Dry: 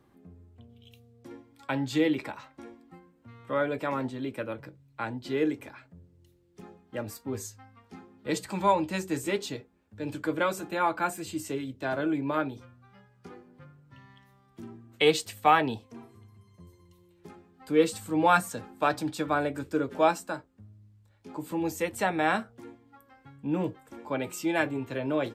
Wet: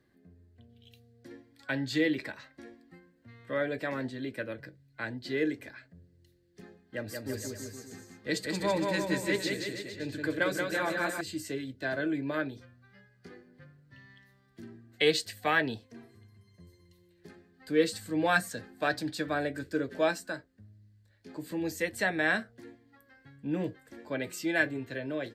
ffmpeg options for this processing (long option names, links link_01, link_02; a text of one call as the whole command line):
ffmpeg -i in.wav -filter_complex "[0:a]asettb=1/sr,asplit=3[link_01][link_02][link_03];[link_01]atrim=end=6.814[link_04];[link_02]atrim=start=6.81:end=11.21,asetpts=PTS-STARTPTS,afade=type=in:duration=0.004:curve=qsin,afade=type=out:start_time=4.396:duration=0.004:curve=qsin,aecho=1:1:180|333|463|573.6|667.6:0.631|0.398|0.251|0.158|0.1,atrim=end_sample=194040[link_05];[link_03]atrim=start=11.206[link_06];[link_04][link_05]acrossfade=duration=0.004:curve1=hsin:curve2=qsin[link_07];[link_07][link_06]acrossfade=duration=0.004:curve1=qsin:curve2=hsin,equalizer=frequency=4400:width_type=o:width=0.39:gain=8.5,dynaudnorm=framelen=100:gausssize=13:maxgain=3.5dB,superequalizer=9b=0.398:10b=0.562:11b=2.24,volume=-6.5dB" out.wav